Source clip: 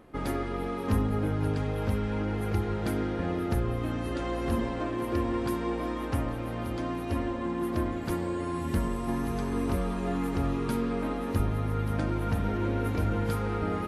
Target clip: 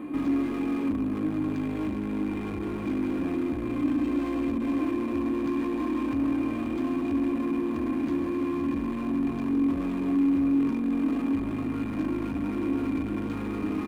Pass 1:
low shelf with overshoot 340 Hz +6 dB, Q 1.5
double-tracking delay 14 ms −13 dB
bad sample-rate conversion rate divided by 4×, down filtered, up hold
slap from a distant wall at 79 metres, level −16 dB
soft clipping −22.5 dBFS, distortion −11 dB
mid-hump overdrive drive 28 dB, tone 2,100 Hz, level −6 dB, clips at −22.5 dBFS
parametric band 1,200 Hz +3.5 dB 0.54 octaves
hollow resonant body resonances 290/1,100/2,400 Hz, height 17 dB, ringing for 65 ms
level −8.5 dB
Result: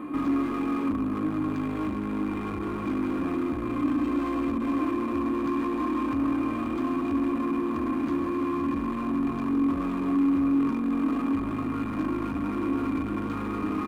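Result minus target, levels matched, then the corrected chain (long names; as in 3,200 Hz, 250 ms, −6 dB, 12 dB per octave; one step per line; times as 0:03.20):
1,000 Hz band +6.0 dB
low shelf with overshoot 340 Hz +6 dB, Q 1.5
double-tracking delay 14 ms −13 dB
bad sample-rate conversion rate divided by 4×, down filtered, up hold
slap from a distant wall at 79 metres, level −16 dB
soft clipping −22.5 dBFS, distortion −11 dB
mid-hump overdrive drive 28 dB, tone 2,100 Hz, level −6 dB, clips at −22.5 dBFS
parametric band 1,200 Hz −6 dB 0.54 octaves
hollow resonant body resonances 290/1,100/2,400 Hz, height 17 dB, ringing for 65 ms
level −8.5 dB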